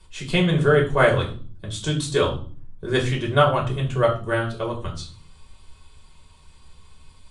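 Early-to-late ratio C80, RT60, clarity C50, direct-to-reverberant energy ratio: 15.5 dB, 0.45 s, 10.0 dB, -2.0 dB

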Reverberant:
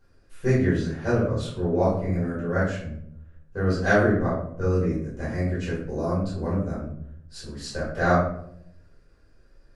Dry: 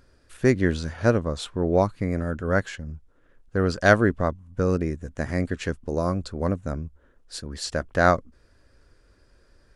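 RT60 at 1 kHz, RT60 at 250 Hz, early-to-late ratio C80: 0.60 s, 0.95 s, 7.0 dB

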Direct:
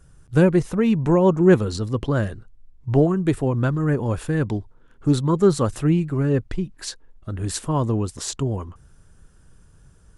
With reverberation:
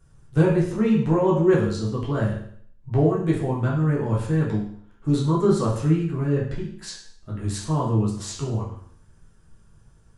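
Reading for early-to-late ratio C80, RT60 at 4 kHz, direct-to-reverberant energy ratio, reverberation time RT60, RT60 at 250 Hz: 8.5 dB, 0.60 s, -5.0 dB, 0.60 s, 0.60 s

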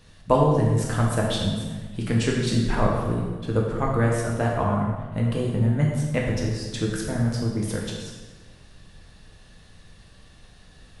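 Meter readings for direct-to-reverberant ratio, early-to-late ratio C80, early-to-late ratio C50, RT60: -2.5 dB, 4.0 dB, 1.5 dB, 1.3 s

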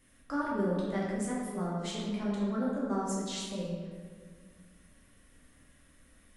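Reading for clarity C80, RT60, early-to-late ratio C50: 1.5 dB, 1.8 s, -0.5 dB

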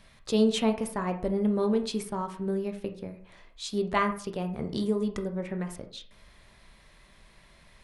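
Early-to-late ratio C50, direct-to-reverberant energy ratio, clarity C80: 10.5 dB, 5.0 dB, 15.0 dB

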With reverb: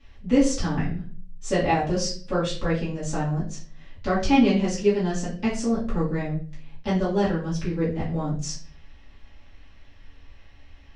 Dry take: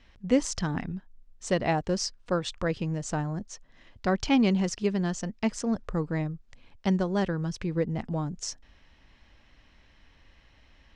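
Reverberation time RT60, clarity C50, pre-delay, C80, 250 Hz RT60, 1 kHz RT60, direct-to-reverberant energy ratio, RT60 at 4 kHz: 0.45 s, 6.5 dB, 3 ms, 12.0 dB, 0.60 s, 0.35 s, -11.0 dB, 0.35 s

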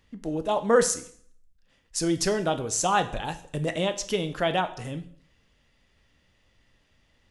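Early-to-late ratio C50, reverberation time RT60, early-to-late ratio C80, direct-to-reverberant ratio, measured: 14.0 dB, 0.60 s, 17.5 dB, 9.5 dB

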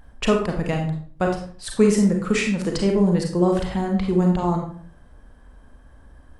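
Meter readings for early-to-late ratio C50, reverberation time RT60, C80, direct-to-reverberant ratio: 4.5 dB, 0.50 s, 9.0 dB, 1.5 dB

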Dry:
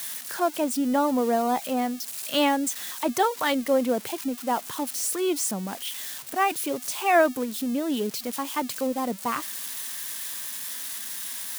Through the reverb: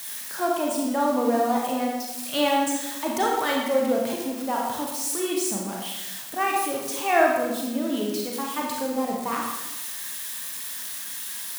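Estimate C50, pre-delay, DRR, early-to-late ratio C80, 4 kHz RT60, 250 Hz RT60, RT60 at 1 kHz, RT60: 1.0 dB, 30 ms, -2.0 dB, 3.5 dB, 0.80 s, 1.0 s, 1.0 s, 1.0 s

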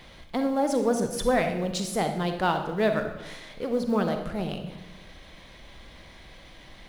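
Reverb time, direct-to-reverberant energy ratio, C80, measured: 1.0 s, 5.5 dB, 9.5 dB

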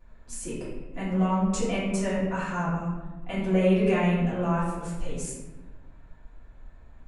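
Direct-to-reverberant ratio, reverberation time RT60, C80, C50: -12.0 dB, 1.2 s, 3.5 dB, 0.5 dB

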